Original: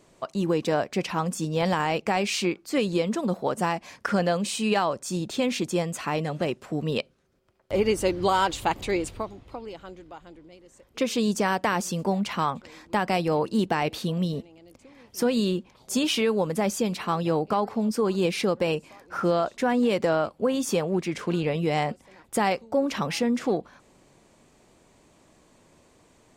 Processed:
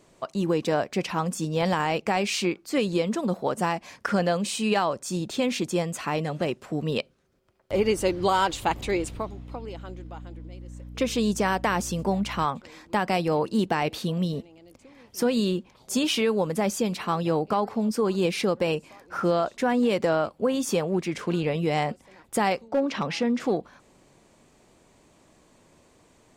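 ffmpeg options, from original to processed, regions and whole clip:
ffmpeg -i in.wav -filter_complex "[0:a]asettb=1/sr,asplit=3[link_01][link_02][link_03];[link_01]atrim=end=8.654[link_04];[link_02]atrim=start=8.65:end=12.45,asetpts=PTS-STARTPTS,afade=type=in:duration=0.004:curve=qsin,afade=type=out:start_time=3.796:duration=0.004:curve=qsin,bandreject=frequency=4600:width=26,aeval=exprs='val(0)+0.0112*(sin(2*PI*60*n/s)+sin(2*PI*2*60*n/s)/2+sin(2*PI*3*60*n/s)/3+sin(2*PI*4*60*n/s)/4+sin(2*PI*5*60*n/s)/5)':channel_layout=same[link_05];[link_03]atrim=start=12.446[link_06];[link_04][link_05]acrossfade=duration=0.004:curve1=hsin:curve2=qsin[link_07];[link_07][link_06]acrossfade=duration=0.004:curve1=qsin:curve2=hsin,asettb=1/sr,asplit=3[link_08][link_09][link_10];[link_08]atrim=end=22.684[link_11];[link_09]atrim=start=22.68:end=23.4,asetpts=PTS-STARTPTS,afade=type=in:duration=0.004:curve=qsin,afade=type=out:start_time=0.716:duration=0.004:curve=qsin,highpass=110,lowpass=5400,volume=17.5dB,asoftclip=hard,volume=-17.5dB[link_12];[link_10]atrim=start=23.396[link_13];[link_11][link_12]acrossfade=duration=0.004:curve1=hsin:curve2=qsin[link_14];[link_14][link_13]acrossfade=duration=0.004:curve1=qsin:curve2=hsin" out.wav

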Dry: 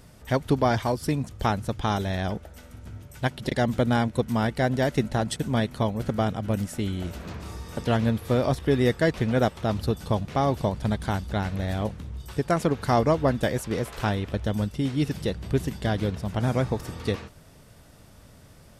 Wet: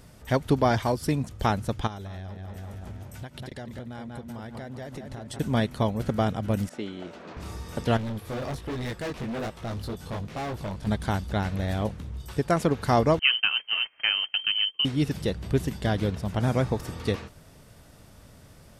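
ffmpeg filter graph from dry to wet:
ffmpeg -i in.wav -filter_complex "[0:a]asettb=1/sr,asplit=3[link_01][link_02][link_03];[link_01]atrim=end=1.874[link_04];[link_02]atrim=start=1.87:end=5.39,asetpts=PTS-STARTPTS,afade=type=in:duration=0.004:curve=qsin,afade=type=out:start_time=3.516:duration=0.004:curve=qsin,equalizer=frequency=93:width_type=o:width=0.21:gain=7.5,asplit=2[link_05][link_06];[link_06]adelay=191,lowpass=frequency=4100:poles=1,volume=-8dB,asplit=2[link_07][link_08];[link_08]adelay=191,lowpass=frequency=4100:poles=1,volume=0.54,asplit=2[link_09][link_10];[link_10]adelay=191,lowpass=frequency=4100:poles=1,volume=0.54,asplit=2[link_11][link_12];[link_12]adelay=191,lowpass=frequency=4100:poles=1,volume=0.54,asplit=2[link_13][link_14];[link_14]adelay=191,lowpass=frequency=4100:poles=1,volume=0.54,asplit=2[link_15][link_16];[link_16]adelay=191,lowpass=frequency=4100:poles=1,volume=0.54[link_17];[link_05][link_07][link_09][link_11][link_13][link_15][link_17]amix=inputs=7:normalize=0,atrim=end_sample=155232,acompressor=threshold=-34dB:ratio=12:attack=3.2:release=140:knee=1:detection=peak[link_18];[link_03]atrim=start=5.386[link_19];[link_04][link_18]acrossfade=duration=0.004:curve1=hsin:curve2=qsin[link_20];[link_20][link_19]acrossfade=duration=0.004:curve1=qsin:curve2=hsin,asettb=1/sr,asplit=3[link_21][link_22][link_23];[link_21]atrim=end=6.694[link_24];[link_22]atrim=start=6.69:end=7.37,asetpts=PTS-STARTPTS,afade=type=in:duration=0.004:curve=qsin,afade=type=out:start_time=0.676:duration=0.004:curve=qsin,highpass=300,lowpass=5100,adynamicequalizer=threshold=0.00282:dfrequency=1500:dqfactor=0.7:tfrequency=1500:tqfactor=0.7:attack=5:release=100:ratio=0.375:range=2.5:mode=cutabove:tftype=highshelf[link_25];[link_23]atrim=start=7.366[link_26];[link_24][link_25]acrossfade=duration=0.004:curve1=hsin:curve2=qsin[link_27];[link_27][link_26]acrossfade=duration=0.004:curve1=qsin:curve2=hsin,asettb=1/sr,asplit=3[link_28][link_29][link_30];[link_28]atrim=end=7.974[link_31];[link_29]atrim=start=7.97:end=10.87,asetpts=PTS-STARTPTS,afade=type=in:duration=0.004:curve=qsin,afade=type=out:start_time=2.896:duration=0.004:curve=qsin,flanger=delay=17:depth=5.1:speed=1.2,asoftclip=type=hard:threshold=-29.5dB[link_32];[link_30]atrim=start=10.866[link_33];[link_31][link_32]acrossfade=duration=0.004:curve1=hsin:curve2=qsin[link_34];[link_34][link_33]acrossfade=duration=0.004:curve1=qsin:curve2=hsin,asettb=1/sr,asplit=3[link_35][link_36][link_37];[link_35]atrim=end=13.194[link_38];[link_36]atrim=start=13.19:end=14.85,asetpts=PTS-STARTPTS,afade=type=in:duration=0.004:curve=qsin,afade=type=out:start_time=1.656:duration=0.004:curve=qsin,agate=range=-22dB:threshold=-33dB:ratio=16:release=100:detection=peak,lowpass=frequency=2700:width_type=q:width=0.5098,lowpass=frequency=2700:width_type=q:width=0.6013,lowpass=frequency=2700:width_type=q:width=0.9,lowpass=frequency=2700:width_type=q:width=2.563,afreqshift=-3200[link_39];[link_37]atrim=start=14.846[link_40];[link_38][link_39]acrossfade=duration=0.004:curve1=hsin:curve2=qsin[link_41];[link_41][link_40]acrossfade=duration=0.004:curve1=qsin:curve2=hsin" out.wav

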